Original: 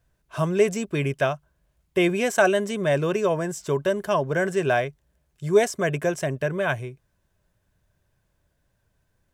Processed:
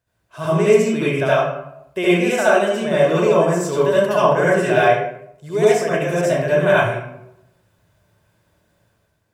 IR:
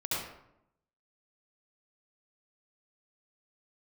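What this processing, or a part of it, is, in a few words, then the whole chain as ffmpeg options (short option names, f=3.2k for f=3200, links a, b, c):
far laptop microphone: -filter_complex "[1:a]atrim=start_sample=2205[a];[0:a][a]afir=irnorm=-1:irlink=0,highpass=f=160:p=1,dynaudnorm=f=130:g=7:m=7dB,volume=-1dB"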